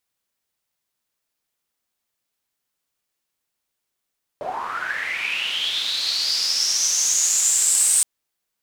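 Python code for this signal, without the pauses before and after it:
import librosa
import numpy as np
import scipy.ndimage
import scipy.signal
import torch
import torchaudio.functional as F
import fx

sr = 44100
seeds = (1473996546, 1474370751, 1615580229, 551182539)

y = fx.riser_noise(sr, seeds[0], length_s=3.62, colour='pink', kind='bandpass', start_hz=560.0, end_hz=8500.0, q=8.5, swell_db=12.5, law='linear')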